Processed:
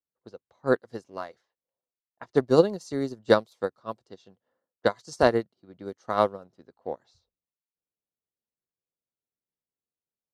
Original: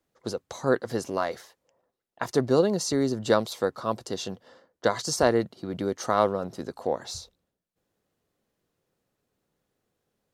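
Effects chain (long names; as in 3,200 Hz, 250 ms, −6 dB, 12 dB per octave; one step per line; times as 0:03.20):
low-pass that shuts in the quiet parts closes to 1,500 Hz, open at −23 dBFS
expander for the loud parts 2.5 to 1, over −36 dBFS
level +5 dB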